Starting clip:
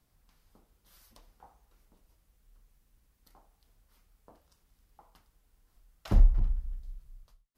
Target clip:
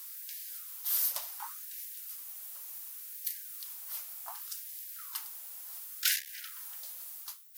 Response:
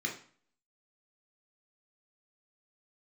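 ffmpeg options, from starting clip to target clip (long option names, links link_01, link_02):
-filter_complex "[0:a]aemphasis=mode=production:type=riaa,asplit=2[link_01][link_02];[link_02]asoftclip=type=tanh:threshold=-35dB,volume=-4dB[link_03];[link_01][link_03]amix=inputs=2:normalize=0,asplit=3[link_04][link_05][link_06];[link_05]asetrate=55563,aresample=44100,atempo=0.793701,volume=-14dB[link_07];[link_06]asetrate=58866,aresample=44100,atempo=0.749154,volume=-18dB[link_08];[link_04][link_07][link_08]amix=inputs=3:normalize=0,aeval=exprs='0.106*sin(PI/2*2.82*val(0)/0.106)':channel_layout=same,afftfilt=real='re*gte(b*sr/1024,500*pow(1600/500,0.5+0.5*sin(2*PI*0.68*pts/sr)))':imag='im*gte(b*sr/1024,500*pow(1600/500,0.5+0.5*sin(2*PI*0.68*pts/sr)))':win_size=1024:overlap=0.75"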